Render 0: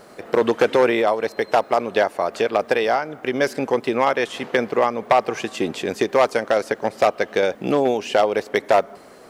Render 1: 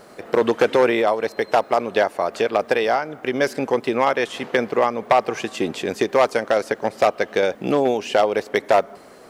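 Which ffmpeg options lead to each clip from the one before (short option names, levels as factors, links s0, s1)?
-af anull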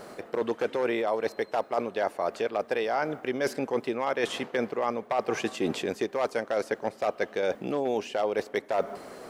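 -af "equalizer=f=470:t=o:w=2.9:g=2,areverse,acompressor=threshold=0.0631:ratio=12,areverse"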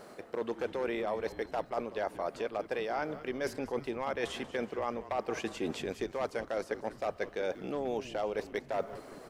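-filter_complex "[0:a]asplit=6[s0][s1][s2][s3][s4][s5];[s1]adelay=188,afreqshift=-140,volume=0.178[s6];[s2]adelay=376,afreqshift=-280,volume=0.0944[s7];[s3]adelay=564,afreqshift=-420,volume=0.0501[s8];[s4]adelay=752,afreqshift=-560,volume=0.0266[s9];[s5]adelay=940,afreqshift=-700,volume=0.014[s10];[s0][s6][s7][s8][s9][s10]amix=inputs=6:normalize=0,volume=0.473"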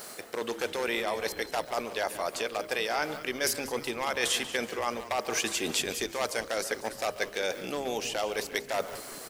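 -filter_complex "[0:a]bandreject=f=68.13:t=h:w=4,bandreject=f=136.26:t=h:w=4,bandreject=f=204.39:t=h:w=4,bandreject=f=272.52:t=h:w=4,bandreject=f=340.65:t=h:w=4,bandreject=f=408.78:t=h:w=4,bandreject=f=476.91:t=h:w=4,bandreject=f=545.04:t=h:w=4,bandreject=f=613.17:t=h:w=4,asplit=2[s0][s1];[s1]adelay=140,highpass=300,lowpass=3400,asoftclip=type=hard:threshold=0.0335,volume=0.224[s2];[s0][s2]amix=inputs=2:normalize=0,crystalizer=i=9:c=0"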